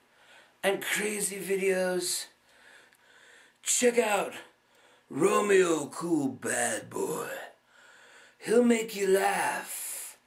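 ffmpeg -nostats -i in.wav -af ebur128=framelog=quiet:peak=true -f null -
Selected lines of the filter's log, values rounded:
Integrated loudness:
  I:         -28.0 LUFS
  Threshold: -39.5 LUFS
Loudness range:
  LRA:         3.6 LU
  Threshold: -49.5 LUFS
  LRA low:   -31.4 LUFS
  LRA high:  -27.8 LUFS
True peak:
  Peak:      -10.3 dBFS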